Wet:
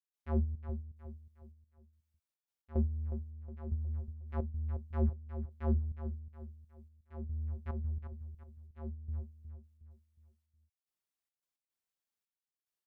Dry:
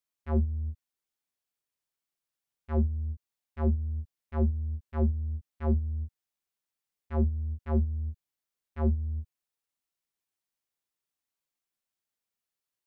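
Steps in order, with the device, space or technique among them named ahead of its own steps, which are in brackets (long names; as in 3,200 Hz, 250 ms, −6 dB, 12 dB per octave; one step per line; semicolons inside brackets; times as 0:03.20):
trance gate with a delay (gate pattern ".xxx.x.xxxx.." 109 BPM −12 dB; repeating echo 363 ms, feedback 40%, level −10 dB)
level −5 dB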